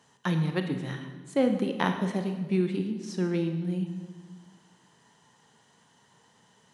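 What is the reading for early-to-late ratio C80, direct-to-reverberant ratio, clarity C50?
9.0 dB, 6.0 dB, 7.5 dB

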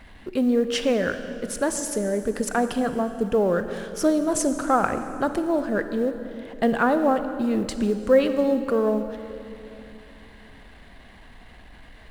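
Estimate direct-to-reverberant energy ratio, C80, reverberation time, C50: 9.0 dB, 10.5 dB, 2.9 s, 9.5 dB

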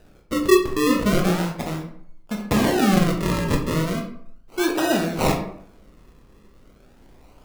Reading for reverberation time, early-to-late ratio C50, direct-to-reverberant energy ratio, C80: 0.65 s, 7.0 dB, 1.5 dB, 10.5 dB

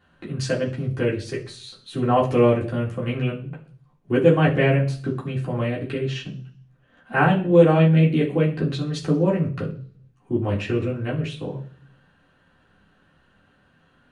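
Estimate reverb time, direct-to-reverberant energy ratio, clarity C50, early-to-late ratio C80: 0.45 s, −6.0 dB, 10.5 dB, 15.5 dB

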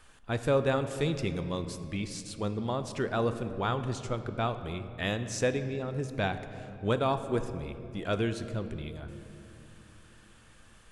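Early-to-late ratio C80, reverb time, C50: 11.5 dB, 2.9 s, 10.5 dB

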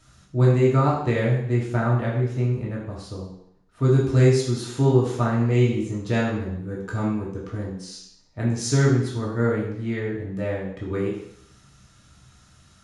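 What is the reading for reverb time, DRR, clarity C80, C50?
0.70 s, −4.5 dB, 6.5 dB, 3.5 dB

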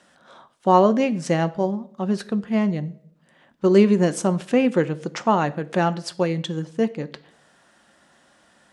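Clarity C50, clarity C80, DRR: 19.0 dB, 22.5 dB, 11.0 dB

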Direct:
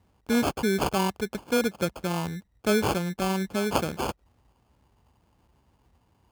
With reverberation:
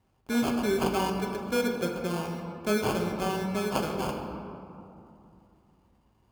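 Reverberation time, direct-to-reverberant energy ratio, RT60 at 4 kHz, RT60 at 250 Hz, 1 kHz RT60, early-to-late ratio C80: 2.7 s, 1.0 dB, 1.2 s, 3.3 s, 2.7 s, 5.0 dB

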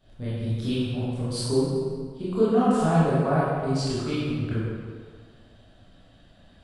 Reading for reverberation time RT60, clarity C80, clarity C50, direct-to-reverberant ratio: 1.8 s, −1.5 dB, −4.5 dB, −11.0 dB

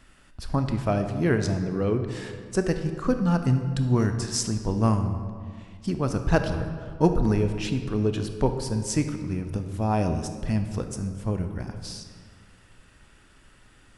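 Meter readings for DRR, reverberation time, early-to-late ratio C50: 6.5 dB, 2.0 s, 8.0 dB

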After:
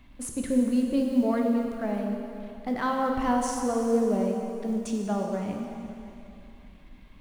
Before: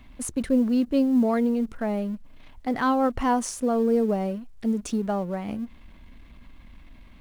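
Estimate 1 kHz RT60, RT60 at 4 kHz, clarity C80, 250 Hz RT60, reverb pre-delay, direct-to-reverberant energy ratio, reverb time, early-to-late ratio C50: 2.8 s, 2.6 s, 3.5 dB, 2.9 s, 6 ms, 1.0 dB, 2.8 s, 2.5 dB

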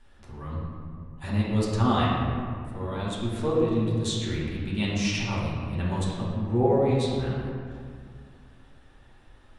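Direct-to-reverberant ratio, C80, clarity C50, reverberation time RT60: −8.0 dB, 0.5 dB, −1.5 dB, 2.1 s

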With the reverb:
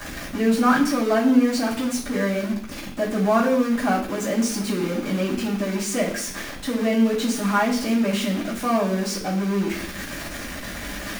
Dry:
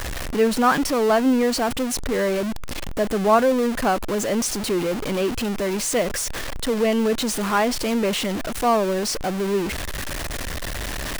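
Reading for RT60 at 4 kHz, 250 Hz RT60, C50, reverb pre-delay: 0.90 s, 0.95 s, 7.5 dB, 3 ms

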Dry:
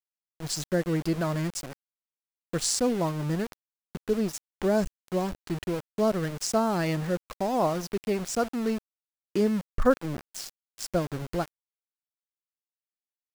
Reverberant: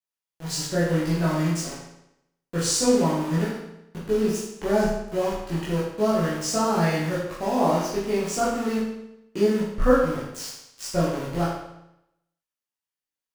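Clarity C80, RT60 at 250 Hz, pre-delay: 4.5 dB, 0.85 s, 14 ms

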